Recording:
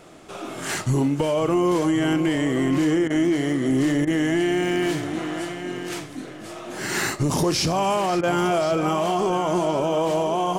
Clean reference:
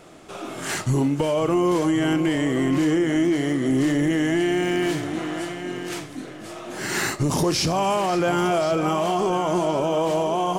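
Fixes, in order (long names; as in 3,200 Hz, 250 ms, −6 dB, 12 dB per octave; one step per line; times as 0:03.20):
repair the gap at 0:03.08/0:04.05/0:08.21, 21 ms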